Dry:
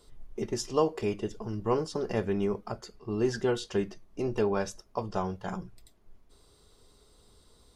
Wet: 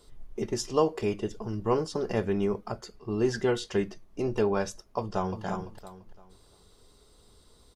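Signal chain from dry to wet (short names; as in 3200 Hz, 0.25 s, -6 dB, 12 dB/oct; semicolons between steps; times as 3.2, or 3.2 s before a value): 3.34–3.83 bell 2000 Hz +6.5 dB 0.27 oct; 4.98–5.44 echo throw 0.34 s, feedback 30%, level -6.5 dB; gain +1.5 dB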